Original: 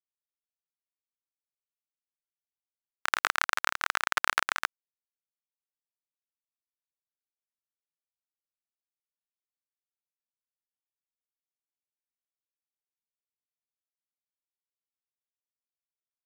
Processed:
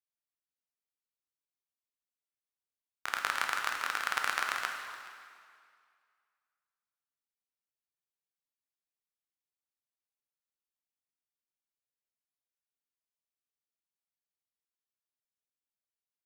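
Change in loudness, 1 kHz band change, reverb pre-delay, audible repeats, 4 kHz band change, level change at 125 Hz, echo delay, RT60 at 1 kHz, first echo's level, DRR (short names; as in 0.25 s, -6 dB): -5.0 dB, -4.0 dB, 10 ms, 1, -4.5 dB, n/a, 0.423 s, 2.2 s, -20.0 dB, 2.0 dB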